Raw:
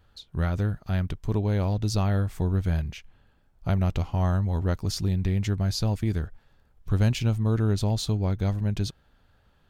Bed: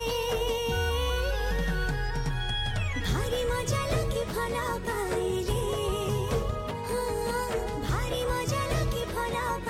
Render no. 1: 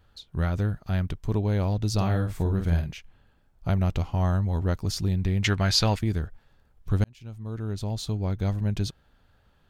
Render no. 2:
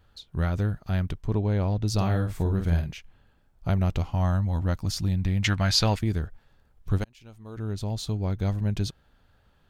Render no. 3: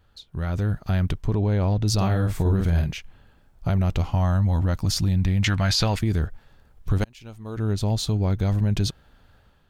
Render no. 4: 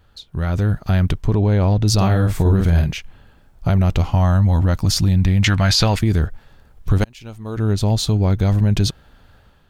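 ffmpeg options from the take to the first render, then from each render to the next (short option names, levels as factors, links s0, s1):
-filter_complex "[0:a]asettb=1/sr,asplit=3[s0][s1][s2];[s0]atrim=end=1.944[s3];[s1]atrim=start=1.94:end=2.91,asetpts=PTS-STARTPTS,afade=t=in:d=0.004:c=qsin,afade=t=out:st=0.966:d=0.004:c=qsin,asplit=2[s4][s5];[s5]adelay=47,volume=0.501[s6];[s4][s6]amix=inputs=2:normalize=0,atrim=end_sample=42777[s7];[s2]atrim=start=2.906[s8];[s3][s7]acrossfade=d=0.004:c1=hsin:c2=qsin[s9];[s9][s8]acrossfade=d=0.004:c1=qsin:c2=hsin,asettb=1/sr,asplit=3[s10][s11][s12];[s10]atrim=end=5.444[s13];[s11]atrim=start=5.44:end=5.99,asetpts=PTS-STARTPTS,afade=t=in:d=0.004:c=qsin,afade=t=out:st=0.546:d=0.004:c=qsin,equalizer=f=2100:w=0.32:g=14[s14];[s12]atrim=start=5.986[s15];[s13][s14]acrossfade=d=0.004:c1=hsin:c2=qsin[s16];[s16][s15]acrossfade=d=0.004:c1=qsin:c2=hsin,asplit=2[s17][s18];[s17]atrim=end=7.04,asetpts=PTS-STARTPTS,afade=t=out:st=7.036:d=0.004:c=hsin[s19];[s18]atrim=start=7.04,asetpts=PTS-STARTPTS,afade=t=in:d=1.55[s20];[s19][s20]concat=n=2:v=0:a=1"
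-filter_complex "[0:a]asettb=1/sr,asplit=3[s0][s1][s2];[s0]atrim=end=1.224[s3];[s1]atrim=start=1.22:end=1.88,asetpts=PTS-STARTPTS,afade=t=in:d=0.004:c=qsin,afade=t=out:st=0.656:d=0.004:c=qsin,highshelf=f=4600:g=-9[s4];[s2]atrim=start=1.876[s5];[s3][s4]acrossfade=d=0.004:c1=hsin:c2=qsin[s6];[s6][s5]acrossfade=d=0.004:c1=qsin:c2=hsin,asettb=1/sr,asplit=3[s7][s8][s9];[s7]atrim=end=4.104[s10];[s8]atrim=start=4.1:end=5.76,asetpts=PTS-STARTPTS,afade=t=in:d=0.004:c=qsin,afade=t=out:st=1.656:d=0.004:c=qsin,equalizer=f=410:t=o:w=0.29:g=-12[s11];[s9]atrim=start=5.756[s12];[s10][s11]acrossfade=d=0.004:c1=hsin:c2=qsin[s13];[s13][s12]acrossfade=d=0.004:c1=qsin:c2=hsin,asettb=1/sr,asplit=3[s14][s15][s16];[s14]atrim=end=6.984[s17];[s15]atrim=start=6.98:end=7.57,asetpts=PTS-STARTPTS,afade=t=in:d=0.004:c=qsin,afade=t=out:st=0.586:d=0.004:c=qsin,equalizer=f=120:t=o:w=2:g=-10.5[s18];[s16]atrim=start=7.566[s19];[s17][s18]acrossfade=d=0.004:c1=hsin:c2=qsin[s20];[s20][s19]acrossfade=d=0.004:c1=qsin:c2=hsin"
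-af "alimiter=limit=0.0944:level=0:latency=1:release=24,dynaudnorm=f=390:g=3:m=2.24"
-af "volume=2"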